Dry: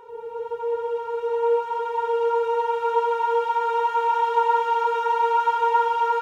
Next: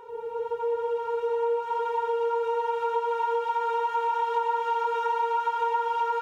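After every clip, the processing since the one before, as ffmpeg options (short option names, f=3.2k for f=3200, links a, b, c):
-af "acompressor=threshold=-24dB:ratio=4"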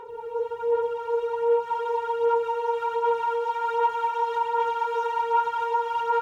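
-af "aphaser=in_gain=1:out_gain=1:delay=2:decay=0.48:speed=1.3:type=sinusoidal"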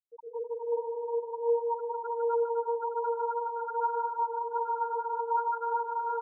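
-filter_complex "[0:a]lowpass=2.5k,afftfilt=real='re*gte(hypot(re,im),0.178)':imag='im*gte(hypot(re,im),0.178)':win_size=1024:overlap=0.75,asplit=2[a][b];[b]aecho=0:1:150|255|328.5|380|416:0.631|0.398|0.251|0.158|0.1[c];[a][c]amix=inputs=2:normalize=0,volume=-7.5dB"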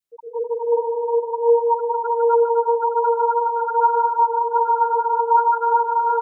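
-af "adynamicequalizer=threshold=0.00708:dfrequency=750:dqfactor=0.85:tfrequency=750:tqfactor=0.85:attack=5:release=100:ratio=0.375:range=3:mode=boostabove:tftype=bell,volume=8dB"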